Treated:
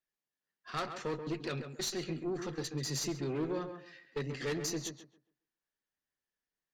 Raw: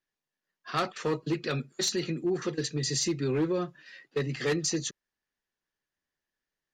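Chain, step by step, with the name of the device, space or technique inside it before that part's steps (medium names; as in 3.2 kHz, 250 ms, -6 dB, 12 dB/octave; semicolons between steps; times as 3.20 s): rockabilly slapback (valve stage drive 24 dB, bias 0.5; tape echo 134 ms, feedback 27%, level -6 dB, low-pass 1.7 kHz); trim -4.5 dB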